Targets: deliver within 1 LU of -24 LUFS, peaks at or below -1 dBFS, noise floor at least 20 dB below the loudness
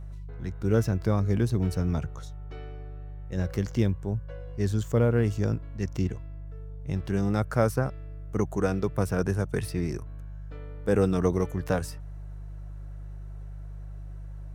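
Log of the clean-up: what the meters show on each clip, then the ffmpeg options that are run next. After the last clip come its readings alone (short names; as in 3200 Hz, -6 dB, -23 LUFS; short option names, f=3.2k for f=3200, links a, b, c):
hum 50 Hz; harmonics up to 150 Hz; hum level -37 dBFS; loudness -28.0 LUFS; peak -8.0 dBFS; loudness target -24.0 LUFS
-> -af "bandreject=f=50:t=h:w=4,bandreject=f=100:t=h:w=4,bandreject=f=150:t=h:w=4"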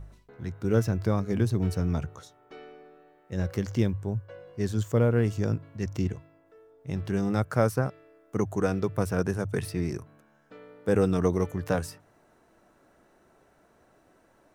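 hum none; loudness -28.5 LUFS; peak -8.5 dBFS; loudness target -24.0 LUFS
-> -af "volume=4.5dB"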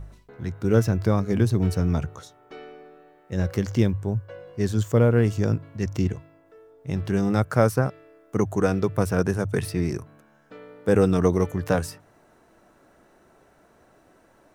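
loudness -24.0 LUFS; peak -4.0 dBFS; noise floor -58 dBFS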